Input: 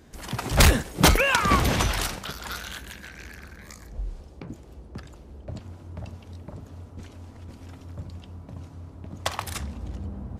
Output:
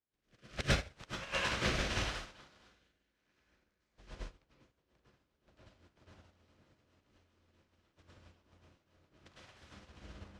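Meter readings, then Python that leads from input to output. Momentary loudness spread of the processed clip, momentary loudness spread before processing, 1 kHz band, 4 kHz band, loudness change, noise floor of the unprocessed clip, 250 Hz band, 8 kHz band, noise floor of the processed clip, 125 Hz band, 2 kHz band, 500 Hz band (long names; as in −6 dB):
20 LU, 23 LU, −17.5 dB, −12.5 dB, −12.0 dB, −47 dBFS, −16.5 dB, −18.5 dB, −82 dBFS, −16.5 dB, −12.5 dB, −14.0 dB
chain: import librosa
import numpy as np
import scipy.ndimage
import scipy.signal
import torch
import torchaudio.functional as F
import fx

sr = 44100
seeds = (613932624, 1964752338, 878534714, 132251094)

y = fx.spec_flatten(x, sr, power=0.41)
y = fx.dynamic_eq(y, sr, hz=300.0, q=0.92, threshold_db=-42.0, ratio=4.0, max_db=-6)
y = fx.rotary_switch(y, sr, hz=0.8, then_hz=7.5, switch_at_s=3.27)
y = fx.gate_flip(y, sr, shuts_db=-6.0, range_db=-33)
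y = fx.air_absorb(y, sr, metres=140.0)
y = fx.rev_plate(y, sr, seeds[0], rt60_s=0.74, hf_ratio=0.85, predelay_ms=90, drr_db=-7.0)
y = fx.upward_expand(y, sr, threshold_db=-41.0, expansion=2.5)
y = y * librosa.db_to_amplitude(-6.5)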